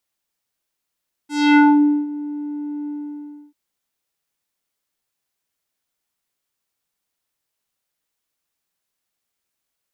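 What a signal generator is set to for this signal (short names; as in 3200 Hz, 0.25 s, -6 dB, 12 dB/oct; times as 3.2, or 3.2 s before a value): synth note square D4 12 dB/oct, low-pass 440 Hz, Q 1.7, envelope 4.5 oct, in 0.52 s, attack 0.274 s, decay 0.50 s, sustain -19 dB, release 0.65 s, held 1.59 s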